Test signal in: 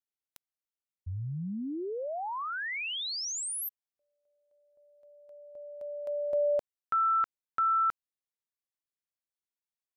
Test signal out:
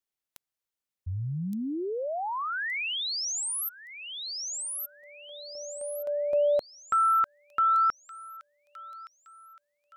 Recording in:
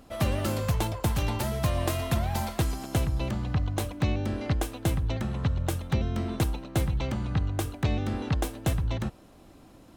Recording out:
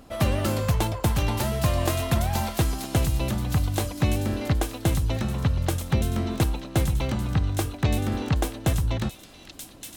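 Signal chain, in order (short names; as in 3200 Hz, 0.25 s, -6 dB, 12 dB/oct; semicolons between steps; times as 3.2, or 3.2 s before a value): thin delay 1.169 s, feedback 39%, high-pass 3700 Hz, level -3 dB; gain +3.5 dB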